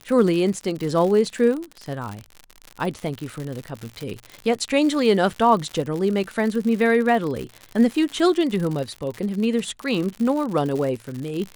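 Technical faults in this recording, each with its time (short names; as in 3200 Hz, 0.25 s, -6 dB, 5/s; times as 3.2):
crackle 100/s -27 dBFS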